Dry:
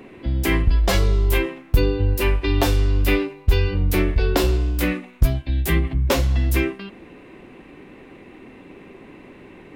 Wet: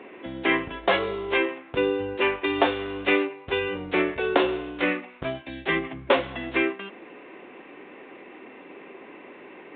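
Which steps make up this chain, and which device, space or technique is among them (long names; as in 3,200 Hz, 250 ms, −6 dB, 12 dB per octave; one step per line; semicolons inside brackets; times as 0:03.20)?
telephone (band-pass filter 390–3,300 Hz; level +2.5 dB; A-law companding 64 kbit/s 8,000 Hz)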